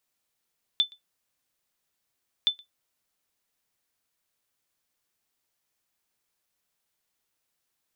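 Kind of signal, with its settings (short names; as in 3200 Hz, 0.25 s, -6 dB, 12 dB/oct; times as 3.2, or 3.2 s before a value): sonar ping 3520 Hz, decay 0.13 s, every 1.67 s, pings 2, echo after 0.12 s, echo -26.5 dB -13.5 dBFS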